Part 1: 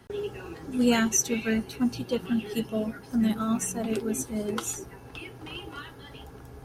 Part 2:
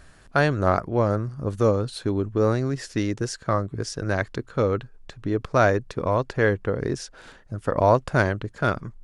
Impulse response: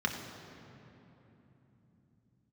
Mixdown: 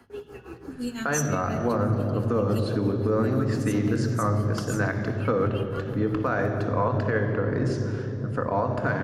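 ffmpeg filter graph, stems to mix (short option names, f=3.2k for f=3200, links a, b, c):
-filter_complex "[0:a]acrossover=split=120|3000[a][b][c];[b]acompressor=threshold=-33dB:ratio=6[d];[a][d][c]amix=inputs=3:normalize=0,tremolo=f=5.9:d=0.93,volume=0dB,asplit=2[e][f];[f]volume=-11.5dB[g];[1:a]alimiter=limit=-11.5dB:level=0:latency=1:release=393,adelay=700,volume=-5dB,asplit=2[h][i];[i]volume=-3.5dB[j];[2:a]atrim=start_sample=2205[k];[g][j]amix=inputs=2:normalize=0[l];[l][k]afir=irnorm=-1:irlink=0[m];[e][h][m]amix=inputs=3:normalize=0,alimiter=limit=-14.5dB:level=0:latency=1:release=76"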